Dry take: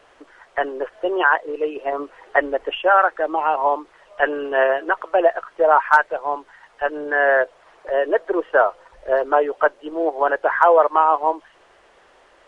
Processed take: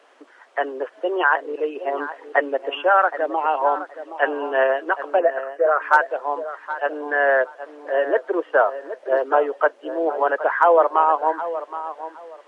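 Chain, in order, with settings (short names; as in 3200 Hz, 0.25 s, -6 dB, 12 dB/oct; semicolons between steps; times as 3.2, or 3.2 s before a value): elliptic high-pass 240 Hz, stop band 40 dB; 5.19–5.82 fixed phaser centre 900 Hz, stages 6; tape echo 0.769 s, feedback 24%, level -11 dB, low-pass 1800 Hz; gain -1 dB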